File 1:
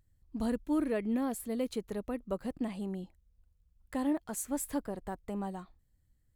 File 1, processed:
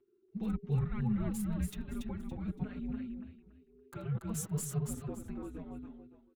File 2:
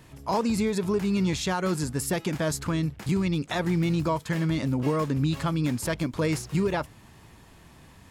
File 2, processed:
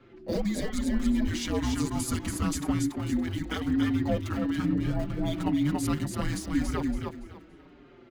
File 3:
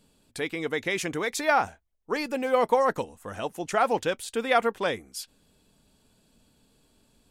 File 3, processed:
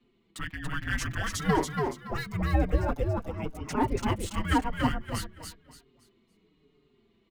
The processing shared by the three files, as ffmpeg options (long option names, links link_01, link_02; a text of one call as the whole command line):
ffmpeg -i in.wav -filter_complex "[0:a]acrossover=split=380|4200[link_01][link_02][link_03];[link_03]aeval=exprs='val(0)*gte(abs(val(0)),0.00668)':channel_layout=same[link_04];[link_01][link_02][link_04]amix=inputs=3:normalize=0,afreqshift=-440,aecho=1:1:283|566|849|1132:0.631|0.17|0.046|0.0124,asplit=2[link_05][link_06];[link_06]adelay=5.3,afreqshift=-1[link_07];[link_05][link_07]amix=inputs=2:normalize=1" out.wav